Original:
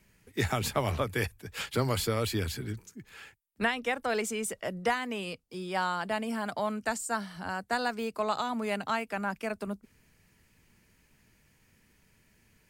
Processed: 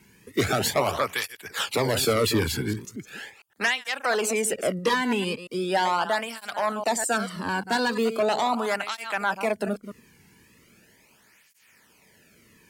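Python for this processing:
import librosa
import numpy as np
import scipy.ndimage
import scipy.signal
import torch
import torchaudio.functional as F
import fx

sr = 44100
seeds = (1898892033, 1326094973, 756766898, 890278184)

y = fx.reverse_delay(x, sr, ms=114, wet_db=-12)
y = fx.fold_sine(y, sr, drive_db=8, ceiling_db=-14.0)
y = fx.flanger_cancel(y, sr, hz=0.39, depth_ms=1.7)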